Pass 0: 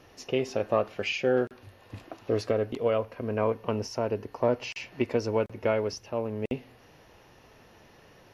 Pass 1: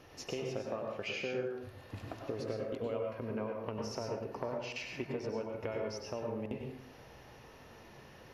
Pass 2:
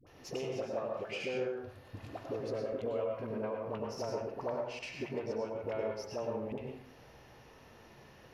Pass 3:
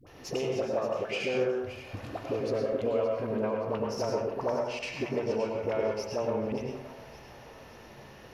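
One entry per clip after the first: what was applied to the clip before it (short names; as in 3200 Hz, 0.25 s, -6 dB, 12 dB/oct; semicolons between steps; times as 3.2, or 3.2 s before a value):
compressor, threshold -35 dBFS, peak gain reduction 15 dB; plate-style reverb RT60 0.7 s, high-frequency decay 0.6×, pre-delay 85 ms, DRR 1 dB; gain -2 dB
self-modulated delay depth 0.058 ms; dynamic EQ 650 Hz, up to +5 dB, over -49 dBFS, Q 0.88; dispersion highs, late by 68 ms, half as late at 580 Hz; gain -2 dB
split-band echo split 650 Hz, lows 0.102 s, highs 0.572 s, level -13 dB; gain +6.5 dB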